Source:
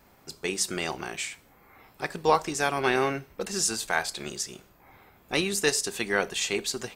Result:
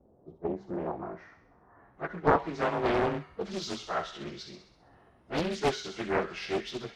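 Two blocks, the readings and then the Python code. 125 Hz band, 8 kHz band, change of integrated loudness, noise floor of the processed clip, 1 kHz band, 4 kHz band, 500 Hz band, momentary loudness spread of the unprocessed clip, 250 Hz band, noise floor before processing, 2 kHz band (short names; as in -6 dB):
+0.5 dB, -20.0 dB, -4.0 dB, -62 dBFS, -2.0 dB, -9.0 dB, -1.5 dB, 10 LU, -0.5 dB, -59 dBFS, -8.0 dB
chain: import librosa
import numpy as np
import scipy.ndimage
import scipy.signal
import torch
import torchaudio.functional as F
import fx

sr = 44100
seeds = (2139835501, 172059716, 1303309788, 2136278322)

p1 = fx.partial_stretch(x, sr, pct=91)
p2 = fx.filter_sweep_lowpass(p1, sr, from_hz=500.0, to_hz=3300.0, start_s=0.05, end_s=2.95, q=1.6)
p3 = fx.cheby_harmonics(p2, sr, harmonics=(7,), levels_db=(-35,), full_scale_db=-9.0)
p4 = fx.peak_eq(p3, sr, hz=2900.0, db=-13.0, octaves=2.2)
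p5 = p4 + fx.echo_wet_highpass(p4, sr, ms=65, feedback_pct=56, hz=1800.0, wet_db=-6.0, dry=0)
p6 = fx.doppler_dist(p5, sr, depth_ms=0.89)
y = p6 * librosa.db_to_amplitude(2.0)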